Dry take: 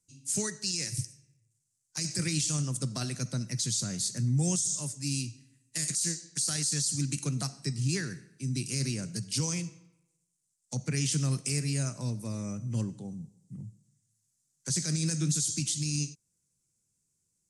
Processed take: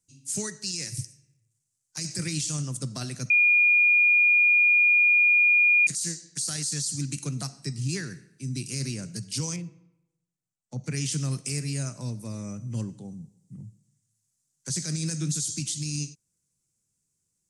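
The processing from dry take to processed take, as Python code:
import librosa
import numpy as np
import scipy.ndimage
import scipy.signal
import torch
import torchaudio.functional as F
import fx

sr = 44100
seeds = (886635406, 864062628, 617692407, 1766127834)

y = fx.lowpass(x, sr, hz=1100.0, slope=6, at=(9.56, 10.84))
y = fx.edit(y, sr, fx.bleep(start_s=3.3, length_s=2.57, hz=2430.0, db=-16.0), tone=tone)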